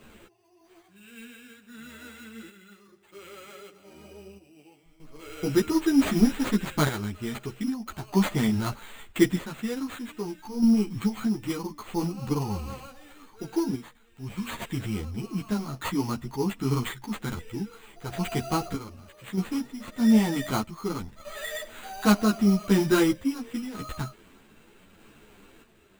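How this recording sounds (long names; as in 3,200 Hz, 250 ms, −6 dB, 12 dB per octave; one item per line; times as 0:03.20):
aliases and images of a low sample rate 5,400 Hz, jitter 0%
sample-and-hold tremolo 1.6 Hz, depth 80%
a shimmering, thickened sound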